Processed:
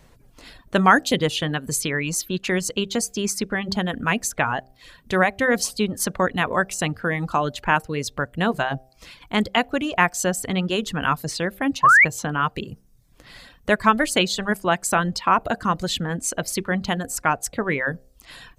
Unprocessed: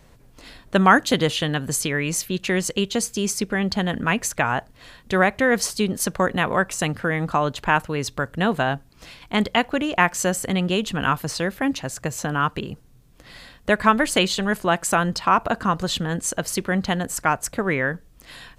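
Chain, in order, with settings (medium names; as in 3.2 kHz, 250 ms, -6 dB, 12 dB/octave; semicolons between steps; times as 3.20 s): de-hum 65.18 Hz, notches 12; reverb removal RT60 0.61 s; painted sound rise, 11.83–12.05 s, 1–2.4 kHz -12 dBFS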